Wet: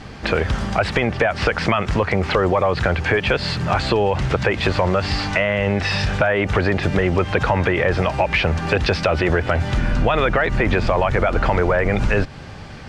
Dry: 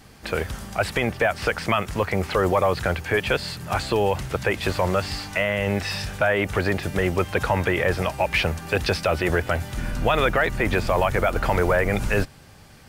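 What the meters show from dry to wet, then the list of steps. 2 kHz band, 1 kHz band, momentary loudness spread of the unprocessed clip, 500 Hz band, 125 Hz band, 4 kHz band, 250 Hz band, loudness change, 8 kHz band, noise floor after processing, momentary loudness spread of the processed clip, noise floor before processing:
+3.5 dB, +3.5 dB, 6 LU, +3.5 dB, +6.0 dB, +4.0 dB, +5.0 dB, +4.0 dB, -2.5 dB, -35 dBFS, 3 LU, -48 dBFS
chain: in parallel at +0.5 dB: limiter -22 dBFS, peak gain reduction 11.5 dB; on the sum: compressor 3:1, threshold -22 dBFS, peak gain reduction 7 dB; air absorption 130 m; gain +7 dB

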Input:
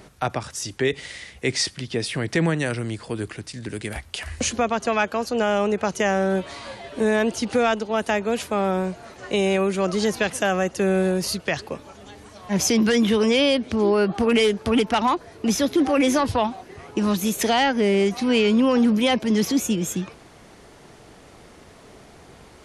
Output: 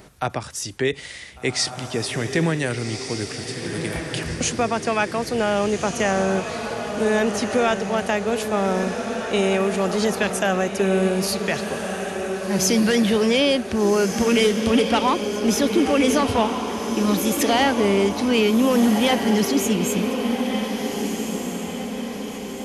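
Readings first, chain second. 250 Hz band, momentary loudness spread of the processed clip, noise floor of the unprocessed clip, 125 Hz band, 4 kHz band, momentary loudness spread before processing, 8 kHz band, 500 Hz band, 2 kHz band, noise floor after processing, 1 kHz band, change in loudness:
+1.5 dB, 10 LU, -48 dBFS, +1.5 dB, +1.5 dB, 13 LU, +2.5 dB, +1.5 dB, +1.5 dB, -34 dBFS, +1.5 dB, +0.5 dB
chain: high shelf 12000 Hz +6.5 dB; on a send: diffused feedback echo 1.558 s, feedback 51%, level -6 dB

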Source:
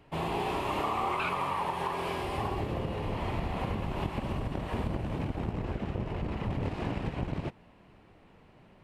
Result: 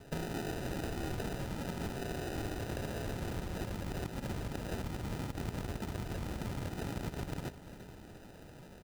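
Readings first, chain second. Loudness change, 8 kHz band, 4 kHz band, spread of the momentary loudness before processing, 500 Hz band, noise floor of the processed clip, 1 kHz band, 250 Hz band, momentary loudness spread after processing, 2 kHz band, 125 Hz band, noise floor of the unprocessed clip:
-6.0 dB, +5.0 dB, -4.5 dB, 5 LU, -6.0 dB, -53 dBFS, -13.0 dB, -4.0 dB, 12 LU, -6.0 dB, -4.5 dB, -58 dBFS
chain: compressor 6:1, threshold -41 dBFS, peak gain reduction 14.5 dB; sample-and-hold 40×; on a send: feedback echo 0.347 s, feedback 53%, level -14.5 dB; on the sum: gain +5 dB

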